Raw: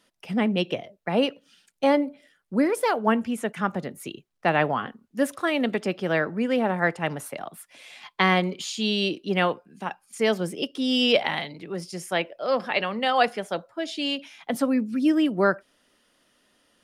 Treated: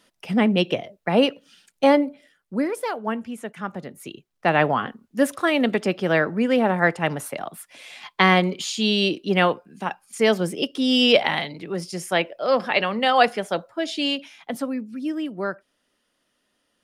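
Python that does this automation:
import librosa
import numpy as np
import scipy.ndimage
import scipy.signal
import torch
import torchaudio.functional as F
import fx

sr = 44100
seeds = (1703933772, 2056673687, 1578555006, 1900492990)

y = fx.gain(x, sr, db=fx.line((1.86, 4.5), (2.99, -5.0), (3.62, -5.0), (4.68, 4.0), (14.05, 4.0), (14.86, -6.5)))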